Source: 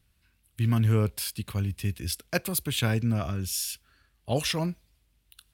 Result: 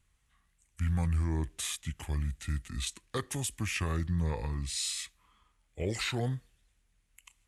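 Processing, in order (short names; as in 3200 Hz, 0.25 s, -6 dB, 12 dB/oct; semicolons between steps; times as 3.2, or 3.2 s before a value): limiter -18.5 dBFS, peak gain reduction 7 dB; speed mistake 45 rpm record played at 33 rpm; gain -3.5 dB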